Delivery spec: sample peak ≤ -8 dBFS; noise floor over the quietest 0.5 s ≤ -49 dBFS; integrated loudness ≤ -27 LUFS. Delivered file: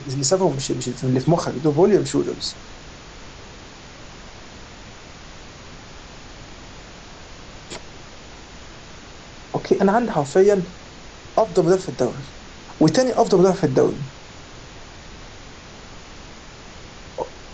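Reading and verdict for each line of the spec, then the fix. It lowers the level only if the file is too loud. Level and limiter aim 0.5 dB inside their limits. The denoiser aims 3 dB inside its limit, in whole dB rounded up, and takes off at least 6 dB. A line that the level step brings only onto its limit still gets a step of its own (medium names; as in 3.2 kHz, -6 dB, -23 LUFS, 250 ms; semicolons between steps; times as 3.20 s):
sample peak -5.0 dBFS: fail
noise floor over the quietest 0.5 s -40 dBFS: fail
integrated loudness -19.5 LUFS: fail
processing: noise reduction 6 dB, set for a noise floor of -40 dBFS; trim -8 dB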